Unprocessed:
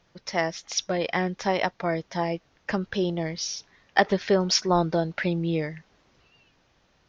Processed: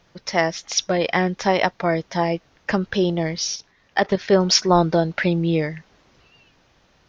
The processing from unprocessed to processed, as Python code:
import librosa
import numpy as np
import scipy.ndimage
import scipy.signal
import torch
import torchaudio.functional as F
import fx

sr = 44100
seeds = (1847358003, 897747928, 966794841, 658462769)

y = fx.level_steps(x, sr, step_db=11, at=(3.55, 4.31), fade=0.02)
y = y * 10.0 ** (6.0 / 20.0)